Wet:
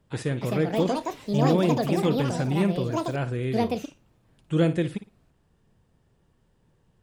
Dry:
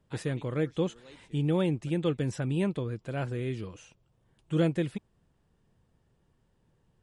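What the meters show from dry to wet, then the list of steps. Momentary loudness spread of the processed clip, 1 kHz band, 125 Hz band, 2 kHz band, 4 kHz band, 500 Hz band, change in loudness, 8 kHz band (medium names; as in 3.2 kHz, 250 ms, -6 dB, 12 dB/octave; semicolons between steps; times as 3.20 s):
8 LU, +13.0 dB, +4.5 dB, +6.0 dB, +7.0 dB, +6.5 dB, +5.5 dB, +7.0 dB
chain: flutter echo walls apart 9.6 m, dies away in 0.26 s; ever faster or slower copies 335 ms, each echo +6 st, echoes 2; trim +4 dB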